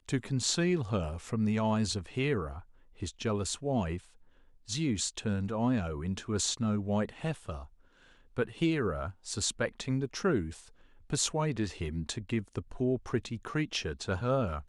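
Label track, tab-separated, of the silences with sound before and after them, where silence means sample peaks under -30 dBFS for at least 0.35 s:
2.510000	3.030000	silence
3.960000	4.700000	silence
7.550000	8.380000	silence
10.430000	11.130000	silence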